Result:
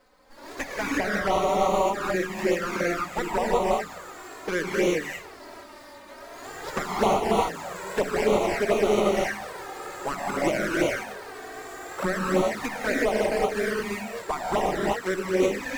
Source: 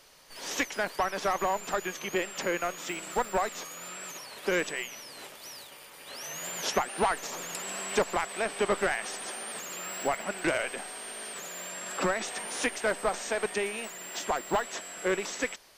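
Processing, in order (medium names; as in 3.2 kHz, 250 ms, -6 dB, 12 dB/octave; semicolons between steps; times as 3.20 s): median filter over 15 samples; gated-style reverb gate 390 ms rising, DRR -5.5 dB; touch-sensitive flanger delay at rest 4 ms, full sweep at -20.5 dBFS; trim +4 dB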